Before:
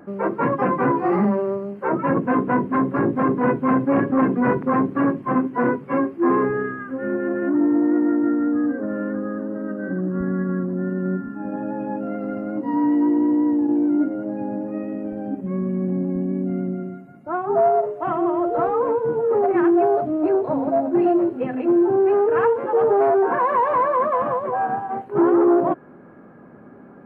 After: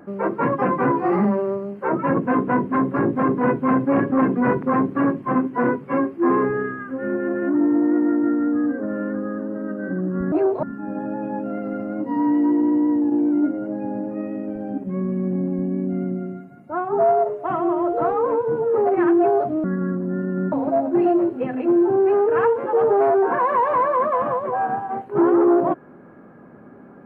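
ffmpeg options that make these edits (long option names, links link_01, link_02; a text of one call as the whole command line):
ffmpeg -i in.wav -filter_complex "[0:a]asplit=5[link_01][link_02][link_03][link_04][link_05];[link_01]atrim=end=10.322[link_06];[link_02]atrim=start=20.208:end=20.522[link_07];[link_03]atrim=start=11.198:end=20.212[link_08];[link_04]atrim=start=10.318:end=11.202[link_09];[link_05]atrim=start=20.518[link_10];[link_06][link_07]acrossfade=duration=0.004:curve1=hsin:curve2=hsin[link_11];[link_11][link_08]acrossfade=duration=0.004:curve1=hsin:curve2=hsin[link_12];[link_12][link_09]acrossfade=duration=0.004:curve1=hsin:curve2=hsin[link_13];[link_13][link_10]acrossfade=duration=0.004:curve1=hsin:curve2=hsin" out.wav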